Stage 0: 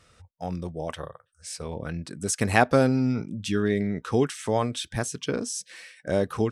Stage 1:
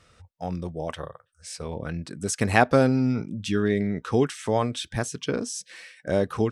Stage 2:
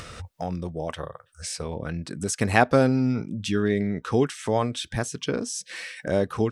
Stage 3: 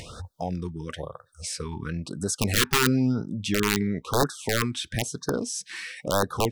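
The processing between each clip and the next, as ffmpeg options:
-af "highshelf=f=9.7k:g=-7.5,volume=1dB"
-af "acompressor=mode=upward:threshold=-26dB:ratio=2.5"
-af "aeval=exprs='(mod(4.73*val(0)+1,2)-1)/4.73':c=same,afftfilt=real='re*(1-between(b*sr/1024,570*pow(2600/570,0.5+0.5*sin(2*PI*1*pts/sr))/1.41,570*pow(2600/570,0.5+0.5*sin(2*PI*1*pts/sr))*1.41))':imag='im*(1-between(b*sr/1024,570*pow(2600/570,0.5+0.5*sin(2*PI*1*pts/sr))/1.41,570*pow(2600/570,0.5+0.5*sin(2*PI*1*pts/sr))*1.41))':win_size=1024:overlap=0.75"

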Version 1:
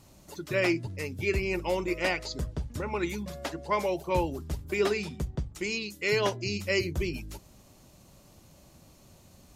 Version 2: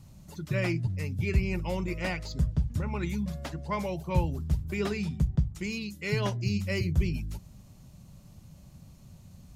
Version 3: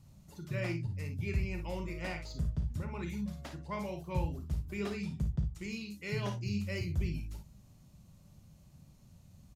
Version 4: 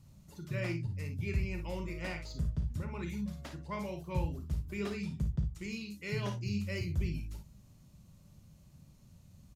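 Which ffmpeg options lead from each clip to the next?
-filter_complex "[0:a]lowshelf=f=240:t=q:w=1.5:g=10,acrossover=split=2200[a][b];[b]asoftclip=type=tanh:threshold=-29.5dB[c];[a][c]amix=inputs=2:normalize=0,volume=-4dB"
-af "aecho=1:1:35|54|68:0.316|0.376|0.178,volume=-8dB"
-af "equalizer=f=750:t=o:w=0.4:g=-3.5"

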